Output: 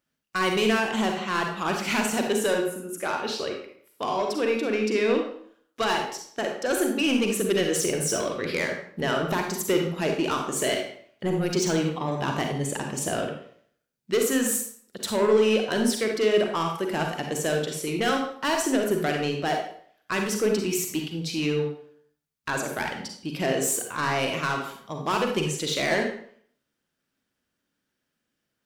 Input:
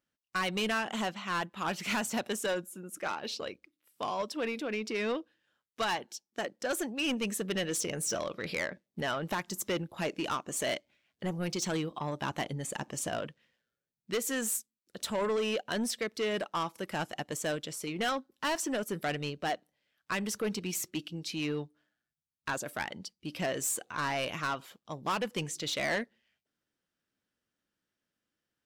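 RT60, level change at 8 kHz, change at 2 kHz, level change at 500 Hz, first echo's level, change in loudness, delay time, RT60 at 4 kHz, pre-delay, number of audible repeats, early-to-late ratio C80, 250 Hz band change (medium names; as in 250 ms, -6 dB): 0.60 s, +6.5 dB, +6.5 dB, +10.5 dB, no echo, +8.0 dB, no echo, 0.45 s, 37 ms, no echo, 7.5 dB, +9.5 dB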